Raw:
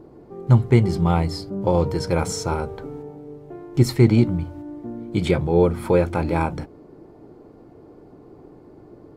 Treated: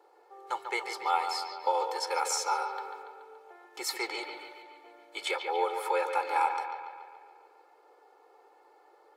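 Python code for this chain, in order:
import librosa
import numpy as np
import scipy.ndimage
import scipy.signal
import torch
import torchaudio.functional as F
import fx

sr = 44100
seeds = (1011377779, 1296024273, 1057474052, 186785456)

p1 = scipy.signal.sosfilt(scipy.signal.butter(4, 690.0, 'highpass', fs=sr, output='sos'), x)
p2 = p1 + 0.82 * np.pad(p1, (int(2.3 * sr / 1000.0), 0))[:len(p1)]
p3 = p2 + fx.echo_bbd(p2, sr, ms=142, stages=4096, feedback_pct=59, wet_db=-7.5, dry=0)
y = p3 * librosa.db_to_amplitude(-4.0)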